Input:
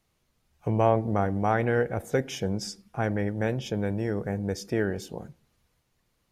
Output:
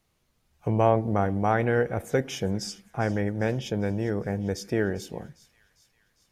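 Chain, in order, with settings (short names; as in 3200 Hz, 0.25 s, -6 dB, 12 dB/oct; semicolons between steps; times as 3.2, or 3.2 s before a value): thin delay 0.401 s, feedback 59%, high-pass 2600 Hz, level -17 dB; gain +1 dB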